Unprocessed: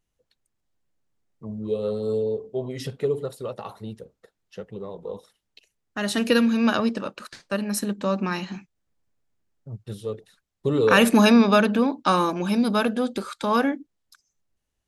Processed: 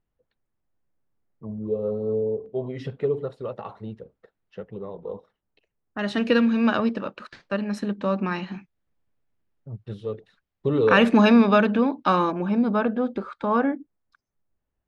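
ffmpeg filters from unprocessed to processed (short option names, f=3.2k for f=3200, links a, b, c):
-af "asetnsamples=n=441:p=0,asendcmd='1.58 lowpass f 1000;2.46 lowpass f 2400;5.13 lowpass f 1400;5.99 lowpass f 3000;12.32 lowpass f 1600',lowpass=1.8k"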